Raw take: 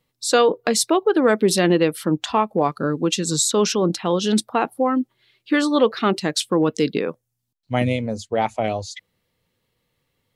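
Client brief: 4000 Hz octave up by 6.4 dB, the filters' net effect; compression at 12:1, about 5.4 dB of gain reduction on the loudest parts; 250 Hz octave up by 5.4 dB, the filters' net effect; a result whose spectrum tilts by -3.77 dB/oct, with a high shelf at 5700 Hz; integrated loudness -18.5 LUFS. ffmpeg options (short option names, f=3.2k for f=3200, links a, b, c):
-af "equalizer=f=250:t=o:g=7,equalizer=f=4k:t=o:g=4.5,highshelf=f=5.7k:g=8.5,acompressor=threshold=-14dB:ratio=12,volume=1.5dB"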